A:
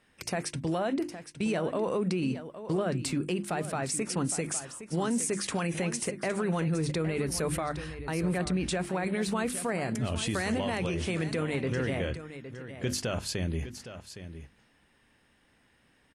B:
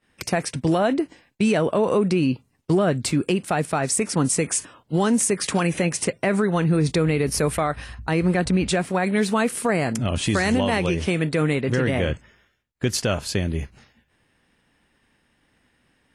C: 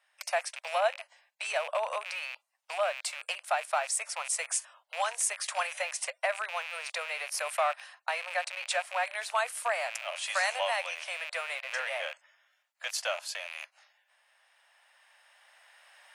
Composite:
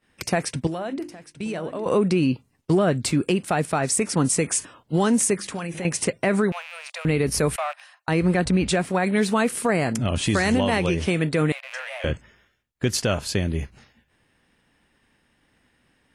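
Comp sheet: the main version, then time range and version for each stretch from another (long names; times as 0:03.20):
B
0:00.67–0:01.86: punch in from A
0:05.39–0:05.85: punch in from A
0:06.52–0:07.05: punch in from C
0:07.56–0:08.08: punch in from C
0:11.52–0:12.04: punch in from C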